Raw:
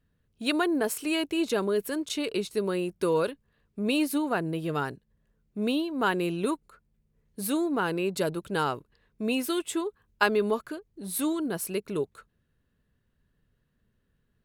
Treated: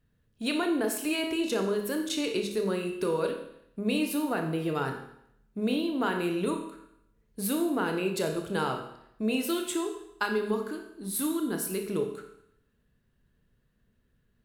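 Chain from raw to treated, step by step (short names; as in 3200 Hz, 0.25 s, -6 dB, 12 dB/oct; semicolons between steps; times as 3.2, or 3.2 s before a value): 9.84–11.87 fifteen-band EQ 100 Hz -11 dB, 630 Hz -8 dB, 2500 Hz -5 dB; compressor, threshold -26 dBFS, peak gain reduction 6.5 dB; reverb RT60 0.75 s, pre-delay 25 ms, DRR 3.5 dB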